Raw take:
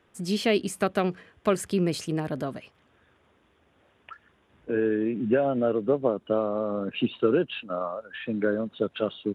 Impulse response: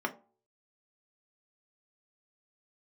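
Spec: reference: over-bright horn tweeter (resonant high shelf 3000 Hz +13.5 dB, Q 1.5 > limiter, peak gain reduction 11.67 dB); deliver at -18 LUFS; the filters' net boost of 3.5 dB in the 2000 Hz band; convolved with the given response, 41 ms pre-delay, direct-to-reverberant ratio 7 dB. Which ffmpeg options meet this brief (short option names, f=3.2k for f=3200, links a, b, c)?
-filter_complex "[0:a]equalizer=f=2k:t=o:g=5.5,asplit=2[a][b];[1:a]atrim=start_sample=2205,adelay=41[c];[b][c]afir=irnorm=-1:irlink=0,volume=-13.5dB[d];[a][d]amix=inputs=2:normalize=0,highshelf=f=3k:t=q:w=1.5:g=13.5,volume=11dB,alimiter=limit=-8dB:level=0:latency=1"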